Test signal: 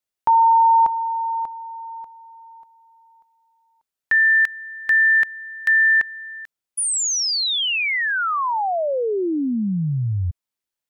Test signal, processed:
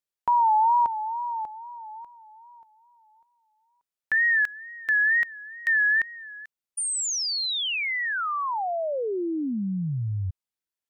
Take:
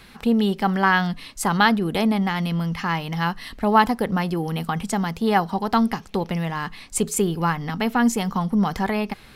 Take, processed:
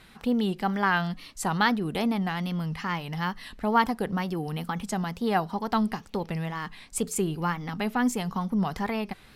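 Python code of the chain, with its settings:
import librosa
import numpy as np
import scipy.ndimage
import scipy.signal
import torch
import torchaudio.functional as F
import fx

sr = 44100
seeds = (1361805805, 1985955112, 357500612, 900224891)

y = fx.wow_flutter(x, sr, seeds[0], rate_hz=2.1, depth_cents=99.0)
y = y * 10.0 ** (-6.0 / 20.0)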